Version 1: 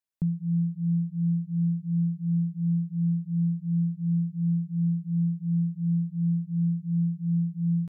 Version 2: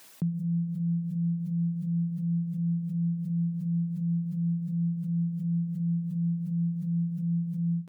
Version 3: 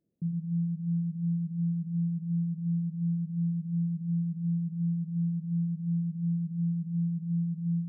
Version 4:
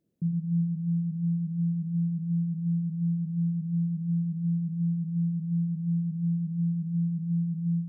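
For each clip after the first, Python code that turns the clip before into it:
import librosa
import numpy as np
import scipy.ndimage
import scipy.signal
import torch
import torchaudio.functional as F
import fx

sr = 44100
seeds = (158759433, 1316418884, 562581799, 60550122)

y1 = fx.dereverb_blind(x, sr, rt60_s=0.65)
y1 = scipy.signal.sosfilt(scipy.signal.butter(2, 150.0, 'highpass', fs=sr, output='sos'), y1)
y1 = fx.pre_swell(y1, sr, db_per_s=26.0)
y2 = scipy.ndimage.gaussian_filter1d(y1, 24.0, mode='constant')
y2 = y2 + 10.0 ** (-12.0 / 20.0) * np.pad(y2, (int(112 * sr / 1000.0), 0))[:len(y2)]
y2 = fx.room_shoebox(y2, sr, seeds[0], volume_m3=480.0, walls='furnished', distance_m=0.82)
y2 = y2 * 10.0 ** (-6.5 / 20.0)
y3 = y2 + 10.0 ** (-13.0 / 20.0) * np.pad(y2, (int(395 * sr / 1000.0), 0))[:len(y2)]
y3 = y3 * 10.0 ** (3.5 / 20.0)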